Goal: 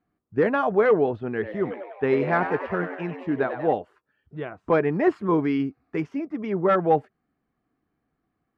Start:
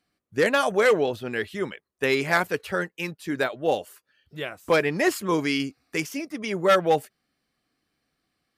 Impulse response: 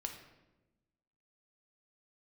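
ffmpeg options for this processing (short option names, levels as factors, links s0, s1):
-filter_complex "[0:a]lowpass=1100,equalizer=f=550:w=5.4:g=-8,asettb=1/sr,asplit=3[s0][s1][s2];[s0]atrim=end=1.304[s3];[s1]atrim=start=1.3:end=3.73,asetpts=PTS-STARTPTS,afade=t=in:d=0.004:c=qsin,afade=t=out:st=2.426:d=0.004:c=qsin,asplit=9[s4][s5][s6][s7][s8][s9][s10][s11][s12];[s5]adelay=96,afreqshift=98,volume=0.335[s13];[s6]adelay=192,afreqshift=196,volume=0.214[s14];[s7]adelay=288,afreqshift=294,volume=0.136[s15];[s8]adelay=384,afreqshift=392,volume=0.0881[s16];[s9]adelay=480,afreqshift=490,volume=0.0562[s17];[s10]adelay=576,afreqshift=588,volume=0.0359[s18];[s11]adelay=672,afreqshift=686,volume=0.0229[s19];[s12]adelay=768,afreqshift=784,volume=0.0148[s20];[s4][s13][s14][s15][s16][s17][s18][s19][s20]amix=inputs=9:normalize=0,atrim=end_sample=107163[s21];[s2]atrim=start=3.726[s22];[s3][s21]acrossfade=d=0.004:c1=hsin:c2=qsin[s23];[s23][s22]acrossfade=d=0.004:c1=qsin:c2=hsin,volume=1.5"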